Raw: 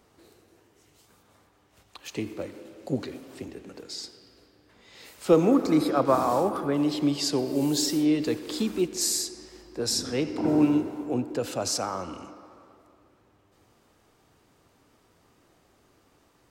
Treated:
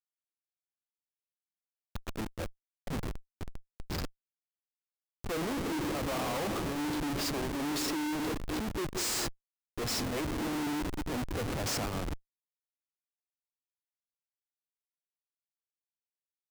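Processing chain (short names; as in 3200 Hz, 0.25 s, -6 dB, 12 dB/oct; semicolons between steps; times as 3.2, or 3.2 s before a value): Schmitt trigger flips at -31.5 dBFS; limiter -32 dBFS, peak gain reduction 9 dB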